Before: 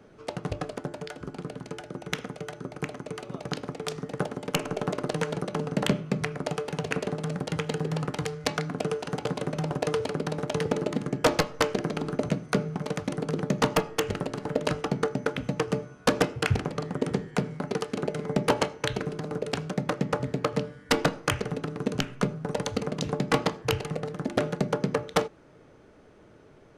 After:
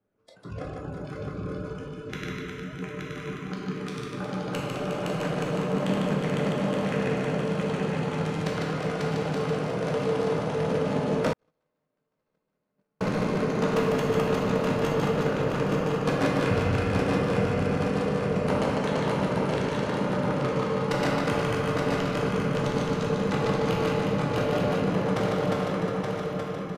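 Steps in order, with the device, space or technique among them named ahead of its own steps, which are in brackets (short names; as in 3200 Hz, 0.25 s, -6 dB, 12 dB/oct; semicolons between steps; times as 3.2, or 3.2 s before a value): regenerating reverse delay 0.437 s, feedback 72%, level -2 dB; swimming-pool hall (reverb RT60 2.3 s, pre-delay 8 ms, DRR -3.5 dB; high shelf 3100 Hz -7 dB); spectral noise reduction 19 dB; reverse bouncing-ball echo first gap 0.15 s, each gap 1.4×, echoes 5; 11.33–13.01 gate -9 dBFS, range -55 dB; gain -7.5 dB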